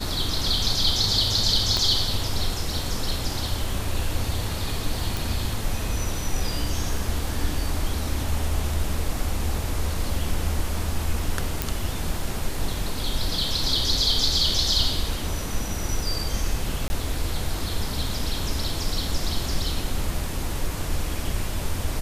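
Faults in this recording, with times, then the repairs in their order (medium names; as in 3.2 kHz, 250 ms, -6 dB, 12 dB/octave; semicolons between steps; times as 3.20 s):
1.77 s: pop -10 dBFS
5.17 s: pop
11.62 s: pop
16.88–16.90 s: dropout 20 ms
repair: de-click; interpolate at 16.88 s, 20 ms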